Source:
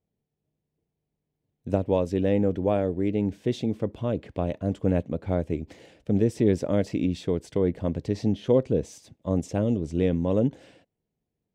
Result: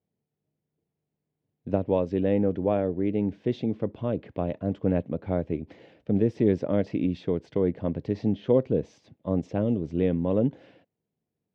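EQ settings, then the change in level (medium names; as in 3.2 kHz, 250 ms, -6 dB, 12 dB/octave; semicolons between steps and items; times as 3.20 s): high-pass 100 Hz; distance through air 230 m; 0.0 dB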